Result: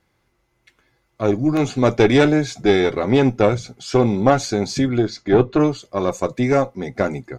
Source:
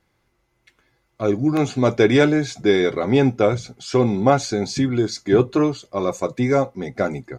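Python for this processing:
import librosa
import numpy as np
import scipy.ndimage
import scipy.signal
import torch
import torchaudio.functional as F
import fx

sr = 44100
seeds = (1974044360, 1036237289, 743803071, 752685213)

y = fx.lowpass(x, sr, hz=4100.0, slope=12, at=(4.98, 5.6))
y = fx.tube_stage(y, sr, drive_db=7.0, bias=0.6)
y = F.gain(torch.from_numpy(y), 4.0).numpy()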